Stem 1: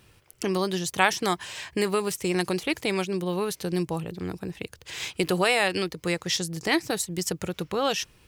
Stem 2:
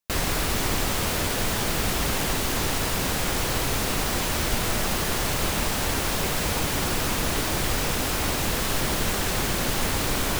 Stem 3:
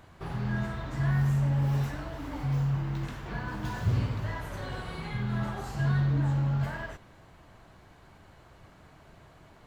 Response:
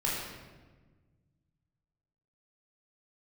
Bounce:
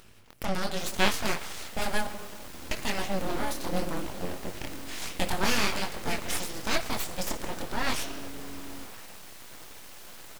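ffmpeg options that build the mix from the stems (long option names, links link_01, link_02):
-filter_complex "[0:a]acompressor=mode=upward:threshold=-47dB:ratio=2.5,flanger=delay=19:depth=7.2:speed=1,volume=0.5dB,asplit=3[link_01][link_02][link_03];[link_01]atrim=end=2.07,asetpts=PTS-STARTPTS,afade=type=out:start_time=2.066:duration=0.004:curve=hsin[link_04];[link_02]atrim=start=2.07:end=2.71,asetpts=PTS-STARTPTS,volume=0[link_05];[link_03]atrim=start=2.71,asetpts=PTS-STARTPTS,afade=type=in:duration=0.004:curve=hsin[link_06];[link_04][link_05][link_06]concat=n=3:v=0:a=1,asplit=2[link_07][link_08];[link_08]volume=-14.5dB[link_09];[1:a]highpass=91,adelay=700,volume=-18dB[link_10];[2:a]adelay=2200,volume=-11dB[link_11];[3:a]atrim=start_sample=2205[link_12];[link_09][link_12]afir=irnorm=-1:irlink=0[link_13];[link_07][link_10][link_11][link_13]amix=inputs=4:normalize=0,aeval=exprs='abs(val(0))':channel_layout=same"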